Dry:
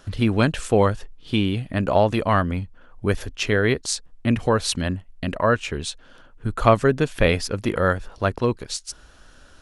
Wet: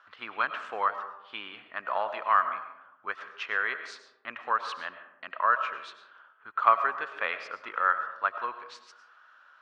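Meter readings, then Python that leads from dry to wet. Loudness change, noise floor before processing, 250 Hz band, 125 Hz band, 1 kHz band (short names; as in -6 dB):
-7.0 dB, -50 dBFS, -31.5 dB, under -40 dB, -1.0 dB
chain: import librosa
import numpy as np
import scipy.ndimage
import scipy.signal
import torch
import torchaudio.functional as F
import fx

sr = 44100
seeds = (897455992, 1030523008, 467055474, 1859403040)

y = fx.ladder_bandpass(x, sr, hz=1400.0, resonance_pct=50)
y = fx.air_absorb(y, sr, metres=64.0)
y = fx.rev_freeverb(y, sr, rt60_s=0.93, hf_ratio=0.4, predelay_ms=65, drr_db=9.5)
y = y * 10.0 ** (6.5 / 20.0)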